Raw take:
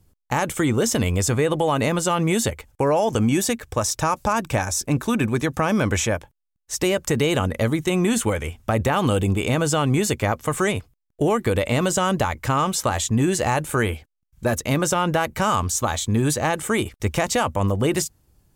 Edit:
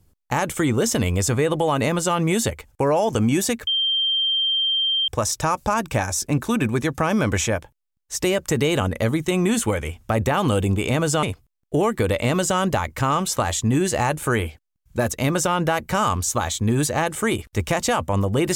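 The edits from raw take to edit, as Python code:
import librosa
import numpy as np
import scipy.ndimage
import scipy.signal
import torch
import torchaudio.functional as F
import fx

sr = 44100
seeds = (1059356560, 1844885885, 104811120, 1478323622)

y = fx.edit(x, sr, fx.insert_tone(at_s=3.67, length_s=1.41, hz=3160.0, db=-18.0),
    fx.cut(start_s=9.82, length_s=0.88), tone=tone)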